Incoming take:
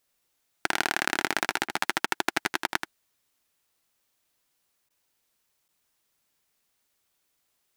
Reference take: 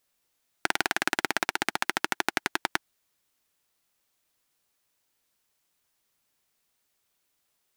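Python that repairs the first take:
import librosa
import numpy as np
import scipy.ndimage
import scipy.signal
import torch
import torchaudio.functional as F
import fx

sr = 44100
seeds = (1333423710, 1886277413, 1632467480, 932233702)

y = fx.fix_interpolate(x, sr, at_s=(1.08, 5.68), length_ms=8.8)
y = fx.fix_interpolate(y, sr, at_s=(1.68, 2.06, 2.67, 4.89), length_ms=12.0)
y = fx.fix_echo_inverse(y, sr, delay_ms=80, level_db=-7.5)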